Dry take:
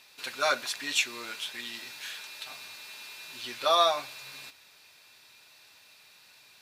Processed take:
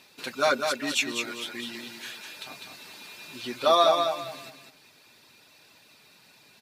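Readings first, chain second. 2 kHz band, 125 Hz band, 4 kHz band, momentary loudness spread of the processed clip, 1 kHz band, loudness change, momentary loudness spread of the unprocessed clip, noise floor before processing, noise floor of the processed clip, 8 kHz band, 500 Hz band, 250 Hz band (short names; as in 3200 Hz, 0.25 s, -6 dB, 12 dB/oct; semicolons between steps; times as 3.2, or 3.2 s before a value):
+1.5 dB, n/a, +0.5 dB, 22 LU, +3.0 dB, +3.5 dB, 18 LU, -58 dBFS, -58 dBFS, +0.5 dB, +6.0 dB, +12.0 dB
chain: reverb removal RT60 0.69 s; bell 220 Hz +13 dB 2.7 oct; feedback echo 0.201 s, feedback 27%, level -5.5 dB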